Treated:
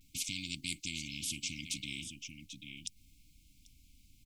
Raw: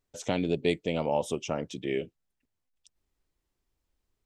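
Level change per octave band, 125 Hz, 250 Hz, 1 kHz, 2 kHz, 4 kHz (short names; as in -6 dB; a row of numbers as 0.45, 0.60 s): -11.0 dB, -14.0 dB, under -40 dB, -3.0 dB, +2.5 dB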